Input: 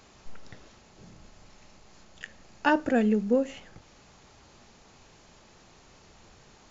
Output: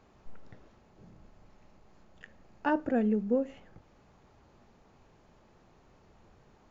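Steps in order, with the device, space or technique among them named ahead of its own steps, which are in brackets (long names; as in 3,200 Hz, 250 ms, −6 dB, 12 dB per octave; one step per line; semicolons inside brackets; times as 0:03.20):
through cloth (high-shelf EQ 2,500 Hz −17 dB)
level −3.5 dB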